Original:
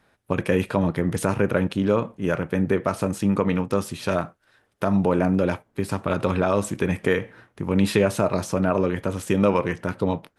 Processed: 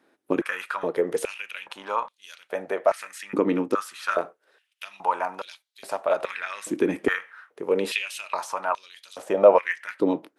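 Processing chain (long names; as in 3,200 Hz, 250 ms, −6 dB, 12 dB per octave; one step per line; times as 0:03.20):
0:09.18–0:09.59: tilt shelving filter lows +8 dB, about 1,500 Hz
high-pass on a step sequencer 2.4 Hz 310–3,900 Hz
level −4 dB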